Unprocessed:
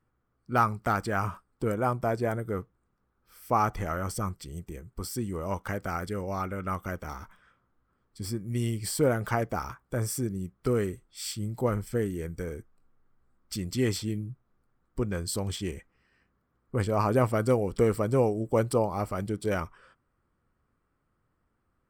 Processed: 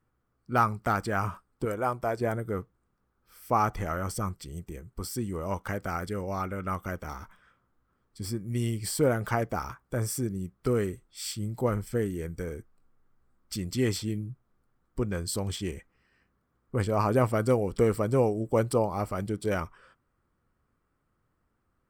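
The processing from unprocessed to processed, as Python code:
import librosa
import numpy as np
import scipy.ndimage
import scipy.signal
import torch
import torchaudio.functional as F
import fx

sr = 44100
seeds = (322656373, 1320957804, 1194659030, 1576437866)

y = fx.peak_eq(x, sr, hz=160.0, db=-8.5, octaves=1.6, at=(1.65, 2.21))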